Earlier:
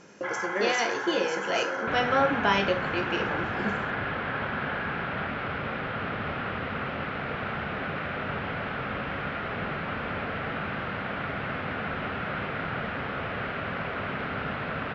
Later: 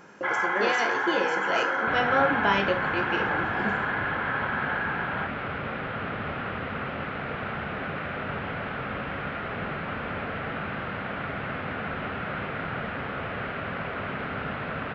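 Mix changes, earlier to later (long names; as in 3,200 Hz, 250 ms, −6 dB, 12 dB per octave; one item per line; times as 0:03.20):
first sound +6.5 dB
master: remove low-pass with resonance 6,500 Hz, resonance Q 1.9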